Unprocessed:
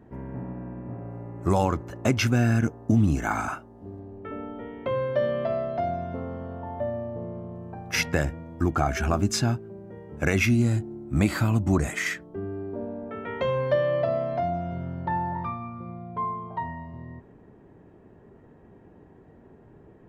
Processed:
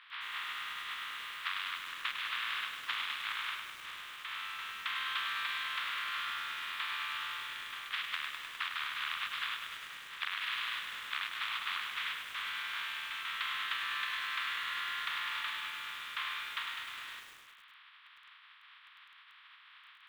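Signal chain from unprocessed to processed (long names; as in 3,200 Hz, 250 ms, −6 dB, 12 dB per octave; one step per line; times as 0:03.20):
compressing power law on the bin magnitudes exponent 0.11
elliptic band-pass filter 1,100–3,500 Hz, stop band 40 dB
downward compressor 16 to 1, threshold −36 dBFS, peak gain reduction 14.5 dB
feedback echo at a low word length 102 ms, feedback 80%, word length 9 bits, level −6 dB
level +2 dB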